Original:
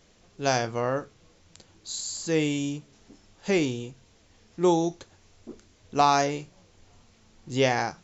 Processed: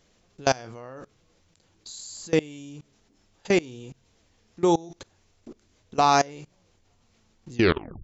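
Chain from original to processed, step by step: tape stop at the end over 0.50 s; level quantiser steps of 23 dB; gain +5 dB

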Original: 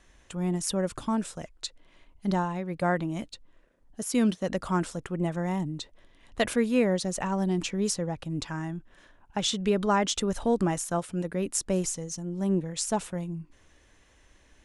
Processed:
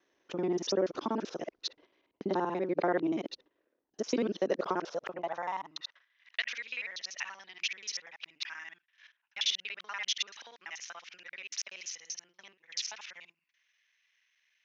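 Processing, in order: local time reversal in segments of 48 ms; steep low-pass 6300 Hz 96 dB/oct; low shelf 70 Hz +8 dB; compressor 3:1, threshold -28 dBFS, peak gain reduction 7.5 dB; high-pass sweep 360 Hz -> 2200 Hz, 4.45–6.44; gate -56 dBFS, range -12 dB

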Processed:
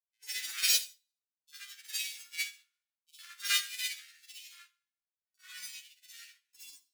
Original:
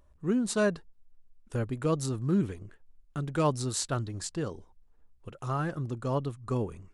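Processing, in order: sample sorter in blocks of 64 samples; steep high-pass 2400 Hz 72 dB/oct; grains, grains 20/s, pitch spread up and down by 12 st; reverb RT60 0.65 s, pre-delay 44 ms, DRR -7 dB; upward expander 2.5:1, over -51 dBFS; gain +3.5 dB

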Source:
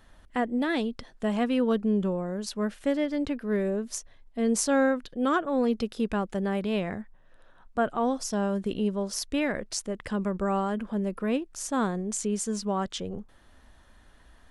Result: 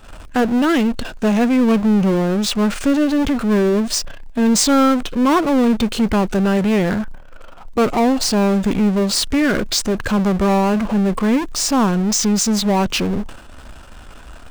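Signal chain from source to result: expander -43 dBFS; power-law curve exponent 0.5; formant shift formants -3 st; gain +6 dB

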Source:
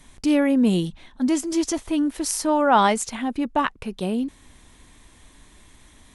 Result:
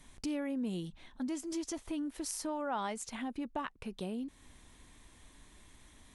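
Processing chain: compressor 2.5:1, threshold -31 dBFS, peak gain reduction 13 dB; gain -7.5 dB

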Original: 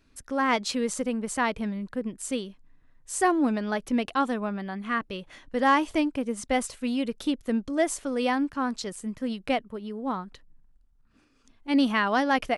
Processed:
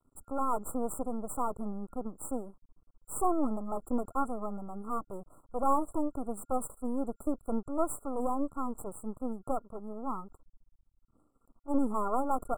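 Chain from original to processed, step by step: half-wave rectifier; 10.23–12.17 high shelf 9400 Hz -5 dB; FFT band-reject 1400–7300 Hz; gain -1 dB

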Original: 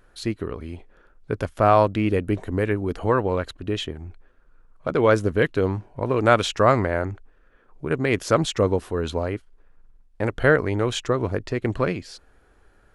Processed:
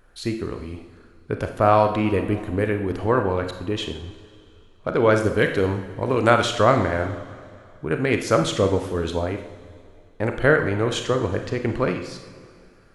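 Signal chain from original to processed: 5.2–6.3 high shelf 3500 Hz +8.5 dB; reverb, pre-delay 31 ms, DRR 5.5 dB

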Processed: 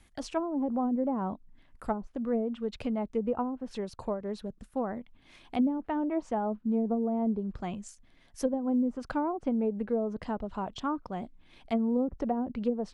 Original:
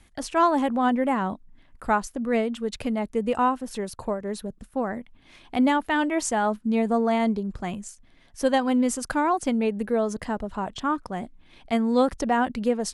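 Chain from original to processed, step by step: treble ducked by the level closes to 370 Hz, closed at -17.5 dBFS; dynamic EQ 1800 Hz, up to -7 dB, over -50 dBFS, Q 2.3; short-mantissa float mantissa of 8-bit; gain -4.5 dB

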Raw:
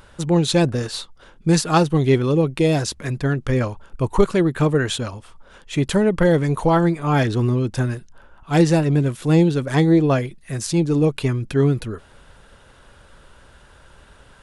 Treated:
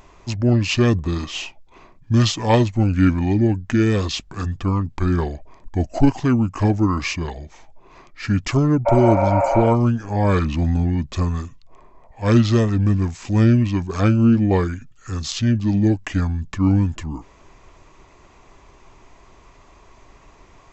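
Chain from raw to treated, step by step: wide varispeed 0.696×; spectral repair 8.89–9.64, 490–2800 Hz after

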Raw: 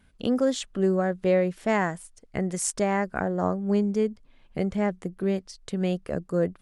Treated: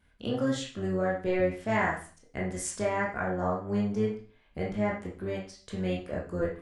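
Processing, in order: octaver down 1 oct, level -4 dB; on a send: bell 1600 Hz +11 dB 2.8 oct + reverb RT60 0.40 s, pre-delay 14 ms, DRR -5.5 dB; on the sum: gain -8 dB

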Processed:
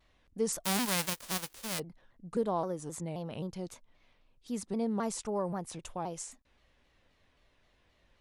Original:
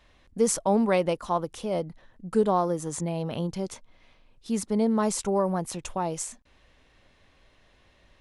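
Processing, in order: 0.64–1.78 spectral whitening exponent 0.1; shaped vibrato saw down 3.8 Hz, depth 160 cents; gain -8.5 dB

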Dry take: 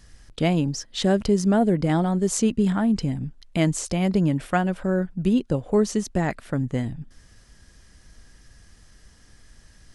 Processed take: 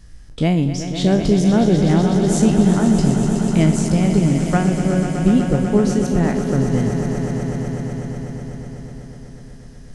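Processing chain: spectral trails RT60 0.36 s; low shelf 330 Hz +9 dB; on a send: swelling echo 0.124 s, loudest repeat 5, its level -10.5 dB; on the sum: gain -1.5 dB

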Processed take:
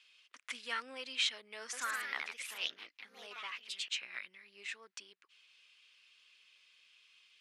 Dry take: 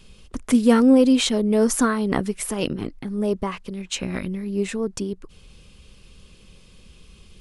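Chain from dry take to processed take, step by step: ladder band-pass 2700 Hz, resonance 25%; 1.6–4.02 echoes that change speed 0.128 s, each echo +2 st, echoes 2; gain +3.5 dB

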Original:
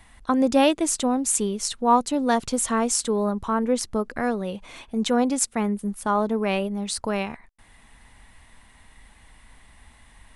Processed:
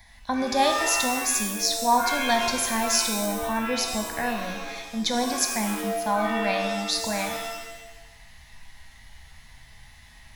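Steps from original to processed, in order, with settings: high shelf 2500 Hz +11 dB; fixed phaser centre 1900 Hz, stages 8; shimmer reverb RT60 1 s, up +7 st, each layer -2 dB, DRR 4 dB; gain -2 dB

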